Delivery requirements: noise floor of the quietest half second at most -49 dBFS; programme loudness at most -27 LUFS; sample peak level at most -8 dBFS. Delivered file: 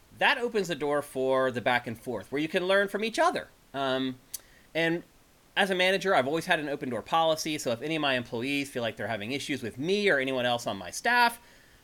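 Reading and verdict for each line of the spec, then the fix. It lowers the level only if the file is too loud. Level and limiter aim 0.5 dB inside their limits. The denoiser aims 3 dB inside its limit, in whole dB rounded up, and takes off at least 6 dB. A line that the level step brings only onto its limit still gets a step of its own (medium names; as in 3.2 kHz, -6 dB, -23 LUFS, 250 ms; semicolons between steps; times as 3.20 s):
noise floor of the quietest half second -60 dBFS: pass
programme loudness -28.0 LUFS: pass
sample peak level -9.0 dBFS: pass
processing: none needed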